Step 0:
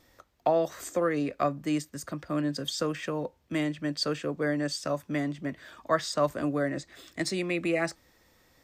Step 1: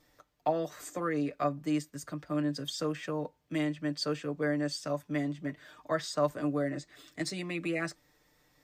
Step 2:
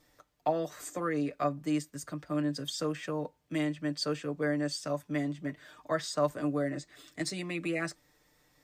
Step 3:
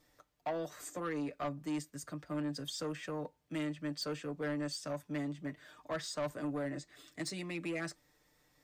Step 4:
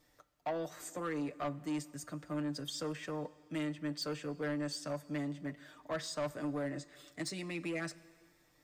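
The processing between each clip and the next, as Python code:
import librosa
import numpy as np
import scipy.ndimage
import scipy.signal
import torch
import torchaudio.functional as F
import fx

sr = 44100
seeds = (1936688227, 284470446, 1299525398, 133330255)

y1 = x + 0.65 * np.pad(x, (int(6.7 * sr / 1000.0), 0))[:len(x)]
y1 = F.gain(torch.from_numpy(y1), -6.0).numpy()
y2 = fx.peak_eq(y1, sr, hz=9100.0, db=3.0, octaves=0.83)
y3 = 10.0 ** (-27.5 / 20.0) * np.tanh(y2 / 10.0 ** (-27.5 / 20.0))
y3 = F.gain(torch.from_numpy(y3), -3.5).numpy()
y4 = fx.rev_plate(y3, sr, seeds[0], rt60_s=2.0, hf_ratio=0.95, predelay_ms=0, drr_db=18.0)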